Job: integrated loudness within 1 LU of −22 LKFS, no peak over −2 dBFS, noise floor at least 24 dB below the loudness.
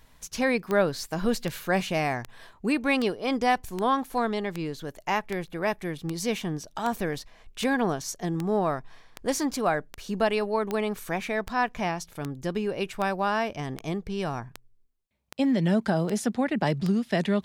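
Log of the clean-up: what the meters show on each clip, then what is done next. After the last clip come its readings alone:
number of clicks 22; integrated loudness −28.0 LKFS; sample peak −10.0 dBFS; target loudness −22.0 LKFS
→ click removal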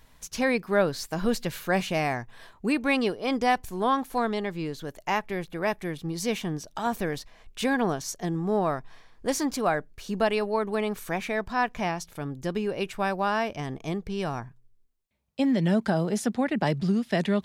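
number of clicks 0; integrated loudness −28.0 LKFS; sample peak −10.0 dBFS; target loudness −22.0 LKFS
→ level +6 dB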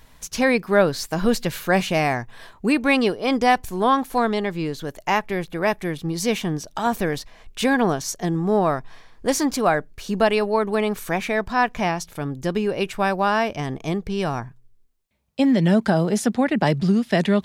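integrated loudness −22.0 LKFS; sample peak −4.0 dBFS; background noise floor −53 dBFS

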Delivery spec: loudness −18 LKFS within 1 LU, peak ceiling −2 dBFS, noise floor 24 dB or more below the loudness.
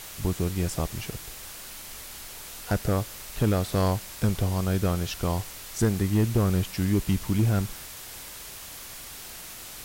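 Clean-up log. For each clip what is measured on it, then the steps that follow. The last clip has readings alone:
share of clipped samples 0.4%; peaks flattened at −14.5 dBFS; background noise floor −42 dBFS; target noise floor −52 dBFS; integrated loudness −27.5 LKFS; sample peak −14.5 dBFS; target loudness −18.0 LKFS
→ clipped peaks rebuilt −14.5 dBFS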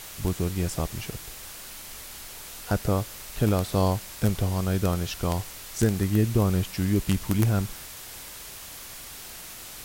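share of clipped samples 0.0%; background noise floor −42 dBFS; target noise floor −51 dBFS
→ broadband denoise 9 dB, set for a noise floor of −42 dBFS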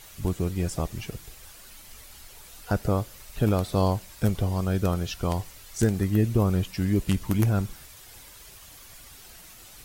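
background noise floor −48 dBFS; target noise floor −51 dBFS
→ broadband denoise 6 dB, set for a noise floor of −48 dBFS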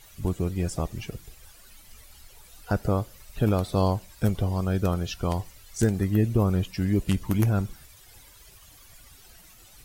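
background noise floor −52 dBFS; integrated loudness −26.5 LKFS; sample peak −6.0 dBFS; target loudness −18.0 LKFS
→ level +8.5 dB
brickwall limiter −2 dBFS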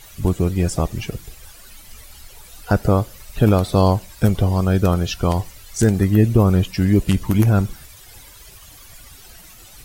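integrated loudness −18.5 LKFS; sample peak −2.0 dBFS; background noise floor −44 dBFS

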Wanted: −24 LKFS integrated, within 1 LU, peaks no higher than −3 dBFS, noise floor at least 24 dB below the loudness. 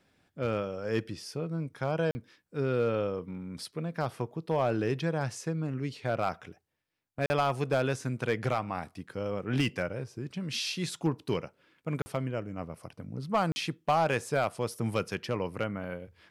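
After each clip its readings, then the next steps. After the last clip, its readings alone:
share of clipped samples 0.3%; peaks flattened at −19.0 dBFS; number of dropouts 4; longest dropout 40 ms; integrated loudness −32.5 LKFS; sample peak −19.0 dBFS; target loudness −24.0 LKFS
→ clipped peaks rebuilt −19 dBFS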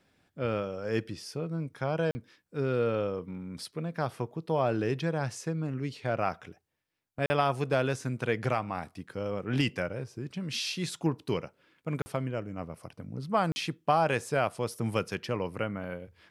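share of clipped samples 0.0%; number of dropouts 4; longest dropout 40 ms
→ repair the gap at 0:02.11/0:07.26/0:12.02/0:13.52, 40 ms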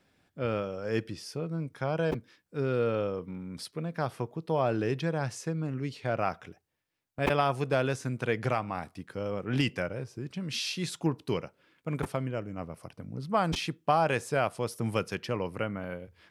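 number of dropouts 0; integrated loudness −32.0 LKFS; sample peak −11.5 dBFS; target loudness −24.0 LKFS
→ level +8 dB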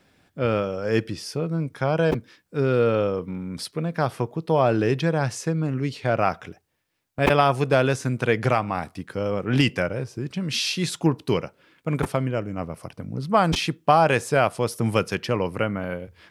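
integrated loudness −24.0 LKFS; sample peak −3.5 dBFS; background noise floor −66 dBFS

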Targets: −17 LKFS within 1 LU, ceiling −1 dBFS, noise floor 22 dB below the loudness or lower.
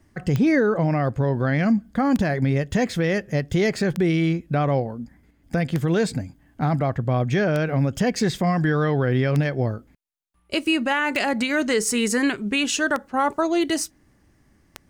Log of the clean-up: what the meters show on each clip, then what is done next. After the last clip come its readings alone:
number of clicks 9; integrated loudness −22.5 LKFS; sample peak −9.0 dBFS; target loudness −17.0 LKFS
→ click removal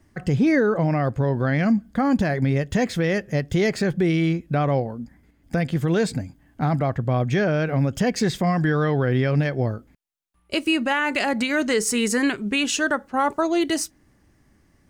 number of clicks 0; integrated loudness −22.5 LKFS; sample peak −11.5 dBFS; target loudness −17.0 LKFS
→ level +5.5 dB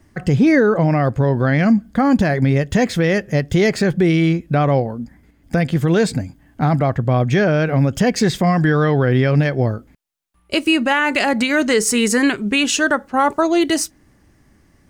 integrated loudness −17.0 LKFS; sample peak −6.0 dBFS; background noise floor −55 dBFS

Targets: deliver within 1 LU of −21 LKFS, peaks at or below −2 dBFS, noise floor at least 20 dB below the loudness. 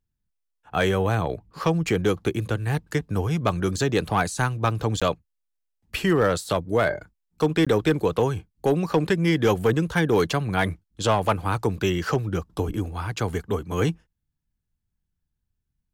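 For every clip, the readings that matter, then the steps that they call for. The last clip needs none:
share of clipped samples 0.3%; peaks flattened at −12.5 dBFS; number of dropouts 2; longest dropout 16 ms; integrated loudness −24.5 LKFS; sample peak −12.5 dBFS; target loudness −21.0 LKFS
→ clipped peaks rebuilt −12.5 dBFS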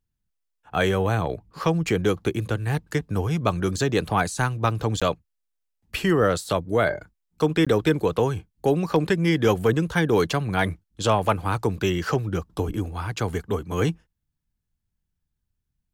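share of clipped samples 0.0%; number of dropouts 2; longest dropout 16 ms
→ repair the gap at 0:05.00/0:07.65, 16 ms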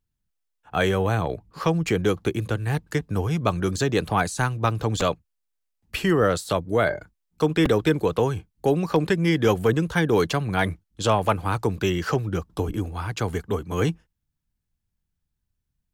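number of dropouts 0; integrated loudness −24.0 LKFS; sample peak −7.0 dBFS; target loudness −21.0 LKFS
→ level +3 dB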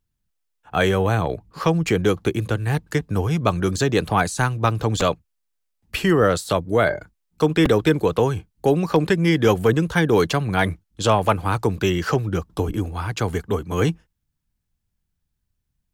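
integrated loudness −21.0 LKFS; sample peak −4.0 dBFS; background noise floor −76 dBFS

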